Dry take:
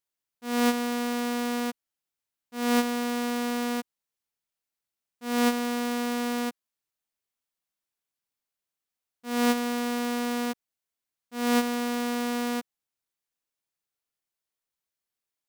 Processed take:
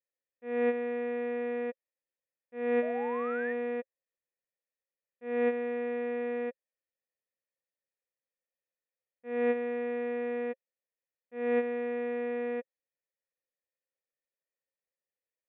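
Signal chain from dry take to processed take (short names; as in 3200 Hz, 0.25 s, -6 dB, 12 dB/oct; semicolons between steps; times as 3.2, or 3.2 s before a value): vocal tract filter e; painted sound rise, 2.82–3.53, 600–1900 Hz -47 dBFS; gain +8 dB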